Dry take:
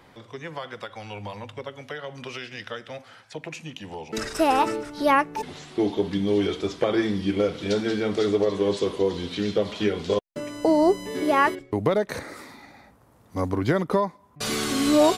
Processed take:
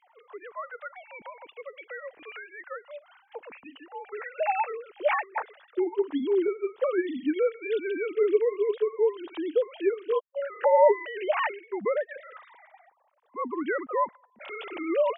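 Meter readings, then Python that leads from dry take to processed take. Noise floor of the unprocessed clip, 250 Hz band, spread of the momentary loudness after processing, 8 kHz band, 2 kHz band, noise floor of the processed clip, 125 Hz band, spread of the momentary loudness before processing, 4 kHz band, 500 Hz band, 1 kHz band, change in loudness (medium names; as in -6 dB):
-56 dBFS, -9.0 dB, 19 LU, under -40 dB, -4.0 dB, -65 dBFS, under -30 dB, 16 LU, under -10 dB, -1.5 dB, -4.0 dB, -3.0 dB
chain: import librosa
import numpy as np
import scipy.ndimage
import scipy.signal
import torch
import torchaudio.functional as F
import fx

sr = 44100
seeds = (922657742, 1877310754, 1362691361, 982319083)

y = fx.sine_speech(x, sr)
y = fx.spec_box(y, sr, start_s=10.23, length_s=0.97, low_hz=550.0, high_hz=2000.0, gain_db=10)
y = fx.bell_lfo(y, sr, hz=0.31, low_hz=860.0, high_hz=2600.0, db=8)
y = y * librosa.db_to_amplitude(-5.0)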